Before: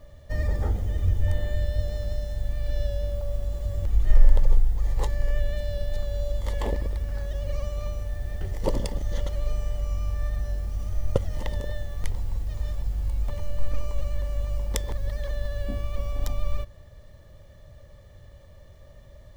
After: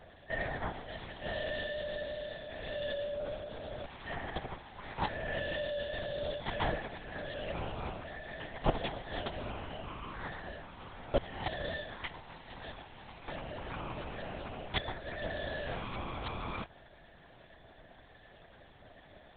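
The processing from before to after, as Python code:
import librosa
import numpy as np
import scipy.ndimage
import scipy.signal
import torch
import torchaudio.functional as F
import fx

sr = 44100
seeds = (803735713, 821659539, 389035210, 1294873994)

y = scipy.signal.sosfilt(scipy.signal.butter(2, 720.0, 'highpass', fs=sr, output='sos'), x)
y = fx.lpc_vocoder(y, sr, seeds[0], excitation='whisper', order=8)
y = y * librosa.db_to_amplitude(5.5)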